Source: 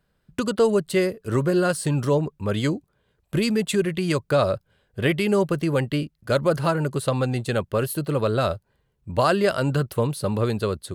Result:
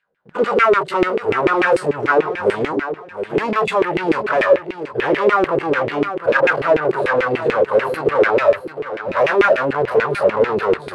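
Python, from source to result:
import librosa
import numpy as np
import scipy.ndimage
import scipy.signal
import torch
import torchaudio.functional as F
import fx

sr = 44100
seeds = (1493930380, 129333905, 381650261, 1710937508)

y = fx.spec_dilate(x, sr, span_ms=60)
y = fx.dynamic_eq(y, sr, hz=480.0, q=1.2, threshold_db=-29.0, ratio=4.0, max_db=6)
y = fx.hpss(y, sr, part='percussive', gain_db=-12)
y = fx.fold_sine(y, sr, drive_db=9, ceiling_db=-5.5)
y = fx.leveller(y, sr, passes=2)
y = fx.echo_feedback(y, sr, ms=710, feedback_pct=22, wet_db=-10)
y = fx.filter_lfo_bandpass(y, sr, shape='saw_down', hz=6.8, low_hz=340.0, high_hz=2500.0, q=3.6)
y = y * librosa.db_to_amplitude(1.0)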